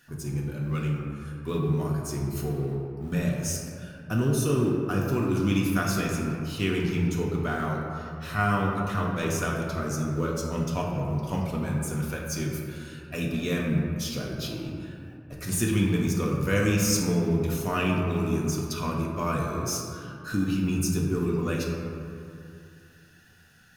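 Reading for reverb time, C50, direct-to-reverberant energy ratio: 2.5 s, 1.5 dB, -2.5 dB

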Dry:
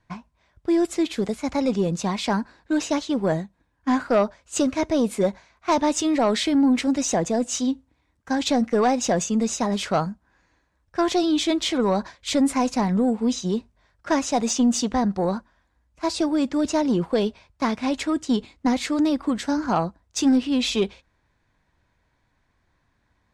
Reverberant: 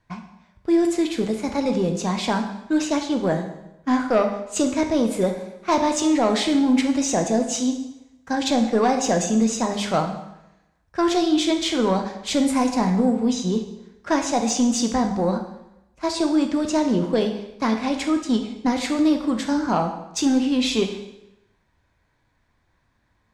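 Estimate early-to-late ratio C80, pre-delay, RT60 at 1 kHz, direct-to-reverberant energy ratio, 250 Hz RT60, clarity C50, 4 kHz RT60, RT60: 10.0 dB, 7 ms, 0.85 s, 4.5 dB, 0.90 s, 7.5 dB, 0.80 s, 0.85 s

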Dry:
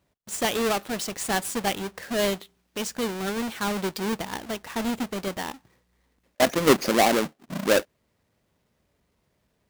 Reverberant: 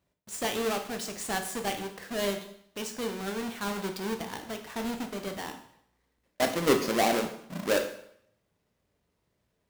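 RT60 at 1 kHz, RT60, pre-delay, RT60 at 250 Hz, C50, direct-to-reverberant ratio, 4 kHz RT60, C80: 0.70 s, 0.70 s, 7 ms, 0.70 s, 9.0 dB, 5.0 dB, 0.65 s, 12.0 dB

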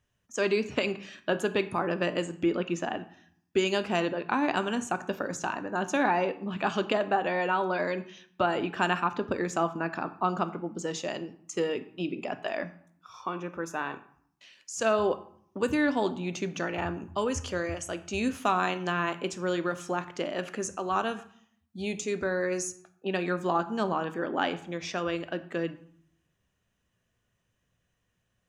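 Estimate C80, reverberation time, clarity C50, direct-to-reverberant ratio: 17.5 dB, 0.60 s, 15.0 dB, 10.0 dB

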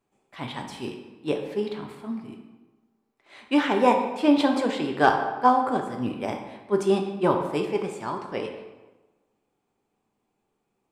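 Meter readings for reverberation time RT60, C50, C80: 1.2 s, 6.5 dB, 8.0 dB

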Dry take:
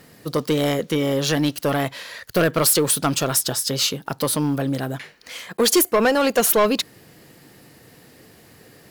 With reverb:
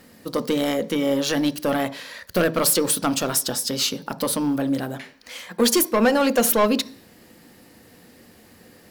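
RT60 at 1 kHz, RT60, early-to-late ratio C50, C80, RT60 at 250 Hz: 0.45 s, 0.45 s, 19.0 dB, 23.5 dB, 0.55 s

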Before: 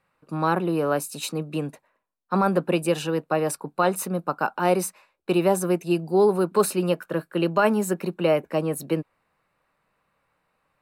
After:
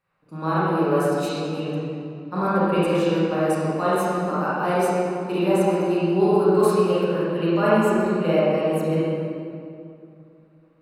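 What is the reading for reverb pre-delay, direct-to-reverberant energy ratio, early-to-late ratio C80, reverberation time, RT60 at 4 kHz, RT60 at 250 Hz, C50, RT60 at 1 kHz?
27 ms, -10.0 dB, -2.5 dB, 2.6 s, 1.6 s, 3.0 s, -6.0 dB, 2.4 s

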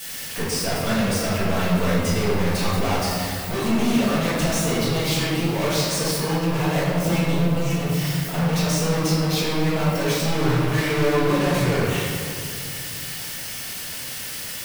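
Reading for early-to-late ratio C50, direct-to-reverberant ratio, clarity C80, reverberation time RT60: -2.5 dB, -11.5 dB, 0.0 dB, 2.4 s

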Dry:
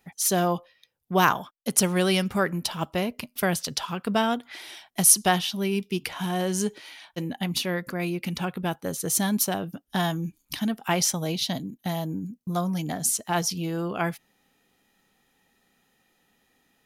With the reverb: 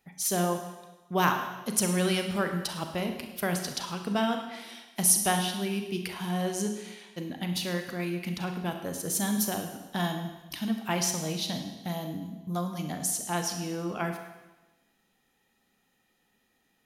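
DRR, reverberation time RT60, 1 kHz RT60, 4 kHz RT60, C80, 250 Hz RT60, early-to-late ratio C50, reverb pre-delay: 4.5 dB, 1.1 s, 1.1 s, 1.1 s, 8.5 dB, 1.1 s, 6.5 dB, 33 ms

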